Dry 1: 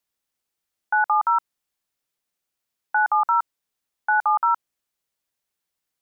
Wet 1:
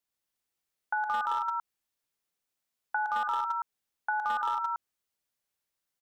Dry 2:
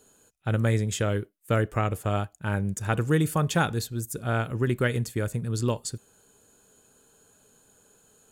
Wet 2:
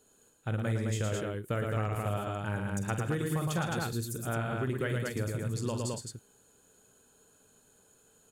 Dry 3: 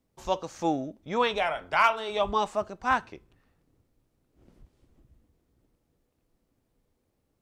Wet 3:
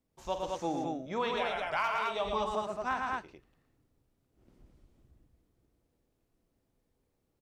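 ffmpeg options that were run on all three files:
-af "aecho=1:1:47|113|158|214:0.299|0.596|0.141|0.631,asoftclip=type=hard:threshold=-12dB,acompressor=threshold=-22dB:ratio=4,volume=-6dB"

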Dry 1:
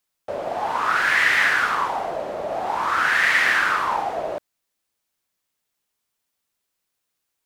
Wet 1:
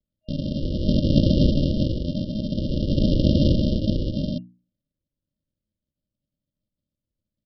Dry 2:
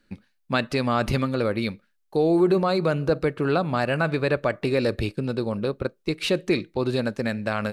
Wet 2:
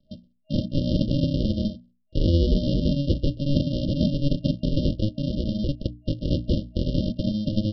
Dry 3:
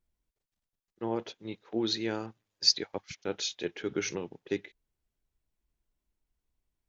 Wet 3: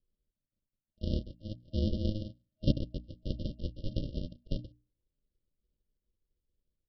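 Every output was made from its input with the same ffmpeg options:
-af "aresample=11025,acrusher=samples=26:mix=1:aa=0.000001,aresample=44100,afftfilt=real='re*(1-between(b*sr/4096,630,2800))':imag='im*(1-between(b*sr/4096,630,2800))':win_size=4096:overlap=0.75,adynamicequalizer=threshold=0.0141:dfrequency=320:dqfactor=0.83:tfrequency=320:tqfactor=0.83:attack=5:release=100:ratio=0.375:range=2.5:mode=boostabove:tftype=bell,bandreject=f=60:t=h:w=6,bandreject=f=120:t=h:w=6,bandreject=f=180:t=h:w=6,bandreject=f=240:t=h:w=6,bandreject=f=300:t=h:w=6"

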